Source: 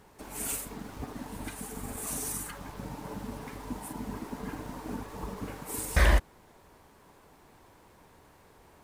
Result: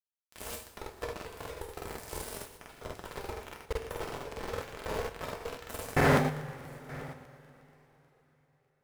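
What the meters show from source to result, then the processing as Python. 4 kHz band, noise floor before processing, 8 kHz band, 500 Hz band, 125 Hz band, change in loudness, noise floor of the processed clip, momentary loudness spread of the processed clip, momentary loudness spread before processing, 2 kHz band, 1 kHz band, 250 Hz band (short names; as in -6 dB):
-0.5 dB, -59 dBFS, -9.0 dB, +5.5 dB, -1.5 dB, -1.0 dB, -74 dBFS, 18 LU, 15 LU, 0.0 dB, +3.5 dB, +1.0 dB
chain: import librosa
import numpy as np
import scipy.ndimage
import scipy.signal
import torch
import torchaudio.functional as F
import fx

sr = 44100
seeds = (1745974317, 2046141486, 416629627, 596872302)

y = x * np.sin(2.0 * np.pi * 200.0 * np.arange(len(x)) / sr)
y = fx.graphic_eq(y, sr, hz=(250, 500, 4000, 8000), db=(-11, 10, -11, -6))
y = np.where(np.abs(y) >= 10.0 ** (-33.0 / 20.0), y, 0.0)
y = fx.high_shelf(y, sr, hz=11000.0, db=-7.0)
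y = y + 10.0 ** (-20.0 / 20.0) * np.pad(y, (int(895 * sr / 1000.0), 0))[:len(y)]
y = fx.rev_double_slope(y, sr, seeds[0], early_s=0.5, late_s=4.2, knee_db=-21, drr_db=-0.5)
y = fx.buffer_crackle(y, sr, first_s=0.8, period_s=0.12, block=2048, kind='repeat')
y = F.gain(torch.from_numpy(y), 2.0).numpy()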